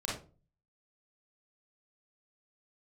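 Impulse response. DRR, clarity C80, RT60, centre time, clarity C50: -4.5 dB, 10.5 dB, 0.35 s, 41 ms, 2.5 dB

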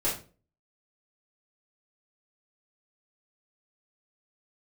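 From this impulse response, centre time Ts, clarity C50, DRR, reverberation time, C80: 33 ms, 6.5 dB, -7.5 dB, 0.35 s, 12.0 dB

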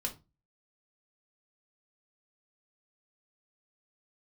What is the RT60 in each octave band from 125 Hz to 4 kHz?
0.45, 0.40, 0.25, 0.25, 0.20, 0.20 s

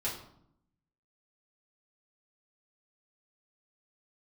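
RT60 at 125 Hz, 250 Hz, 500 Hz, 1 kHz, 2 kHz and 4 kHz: 1.1, 1.0, 0.75, 0.70, 0.50, 0.45 s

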